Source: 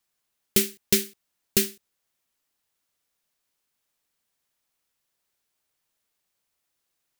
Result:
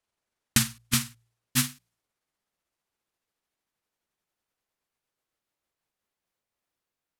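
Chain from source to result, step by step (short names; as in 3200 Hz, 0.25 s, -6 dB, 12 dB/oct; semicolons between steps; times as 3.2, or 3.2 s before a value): gliding pitch shift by -10 st ending unshifted; de-hum 58.23 Hz, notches 3; mismatched tape noise reduction decoder only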